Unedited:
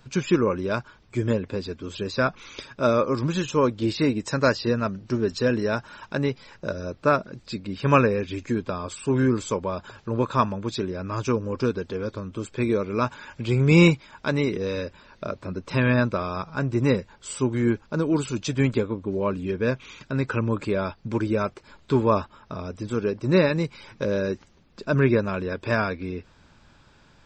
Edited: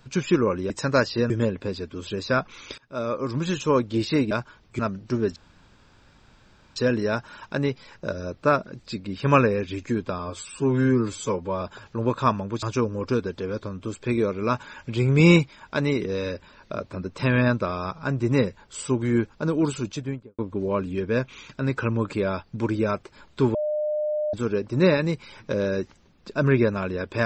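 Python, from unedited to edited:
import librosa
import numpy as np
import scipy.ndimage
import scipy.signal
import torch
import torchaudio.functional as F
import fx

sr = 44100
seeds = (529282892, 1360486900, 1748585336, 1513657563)

y = fx.studio_fade_out(x, sr, start_s=18.23, length_s=0.67)
y = fx.edit(y, sr, fx.swap(start_s=0.7, length_s=0.48, other_s=4.19, other_length_s=0.6),
    fx.fade_in_from(start_s=2.66, length_s=0.75, floor_db=-19.5),
    fx.insert_room_tone(at_s=5.36, length_s=1.4),
    fx.stretch_span(start_s=8.79, length_s=0.95, factor=1.5),
    fx.cut(start_s=10.75, length_s=0.39),
    fx.bleep(start_s=22.06, length_s=0.79, hz=604.0, db=-22.5), tone=tone)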